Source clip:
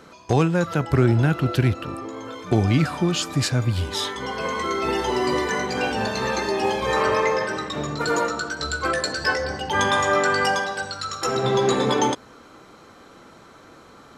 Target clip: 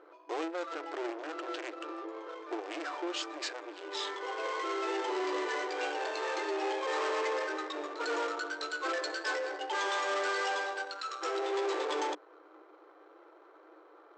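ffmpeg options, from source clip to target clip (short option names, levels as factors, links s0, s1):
-af "aeval=exprs='(tanh(14.1*val(0)+0.3)-tanh(0.3))/14.1':c=same,adynamicsmooth=sensitivity=6:basefreq=1100,afftfilt=real='re*between(b*sr/4096,300,8300)':imag='im*between(b*sr/4096,300,8300)':win_size=4096:overlap=0.75,volume=0.531"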